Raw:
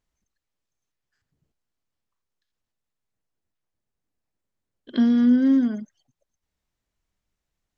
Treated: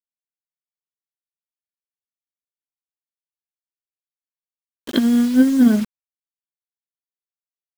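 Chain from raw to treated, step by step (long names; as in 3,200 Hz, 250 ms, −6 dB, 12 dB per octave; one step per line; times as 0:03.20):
compressor whose output falls as the input rises −21 dBFS, ratio −0.5
bit reduction 7 bits
level +8.5 dB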